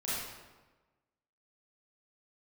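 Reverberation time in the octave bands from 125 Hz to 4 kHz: 1.3, 1.3, 1.3, 1.2, 1.0, 0.85 seconds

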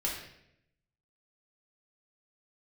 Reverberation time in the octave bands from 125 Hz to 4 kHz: 1.1, 1.0, 0.85, 0.65, 0.75, 0.65 seconds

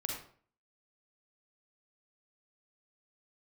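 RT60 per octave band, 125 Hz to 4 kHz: 0.55, 0.55, 0.50, 0.50, 0.40, 0.35 seconds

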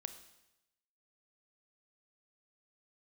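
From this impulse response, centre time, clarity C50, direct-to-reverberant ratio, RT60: 10 ms, 11.0 dB, 9.5 dB, 0.95 s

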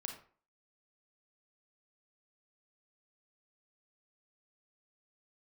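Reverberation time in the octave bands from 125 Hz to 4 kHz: 0.40, 0.45, 0.45, 0.45, 0.40, 0.30 seconds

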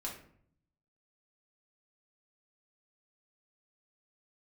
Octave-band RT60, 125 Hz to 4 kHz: 1.1, 0.90, 0.65, 0.55, 0.50, 0.35 seconds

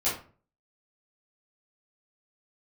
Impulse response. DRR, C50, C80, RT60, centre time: −11.0 dB, 5.5 dB, 11.5 dB, 0.40 s, 35 ms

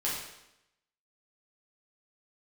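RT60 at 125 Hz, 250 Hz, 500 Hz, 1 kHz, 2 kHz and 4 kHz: 0.85, 0.90, 0.85, 0.85, 0.85, 0.80 seconds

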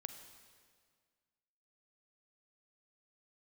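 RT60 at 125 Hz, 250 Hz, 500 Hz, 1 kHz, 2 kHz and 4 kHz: 2.0, 2.0, 1.9, 1.8, 1.7, 1.6 seconds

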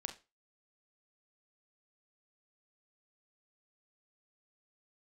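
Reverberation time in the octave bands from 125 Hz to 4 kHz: 0.30, 0.25, 0.30, 0.25, 0.25, 0.25 seconds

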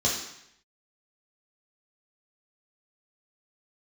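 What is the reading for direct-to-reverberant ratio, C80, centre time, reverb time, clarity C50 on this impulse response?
−4.5 dB, 7.0 dB, 41 ms, 0.75 s, 4.0 dB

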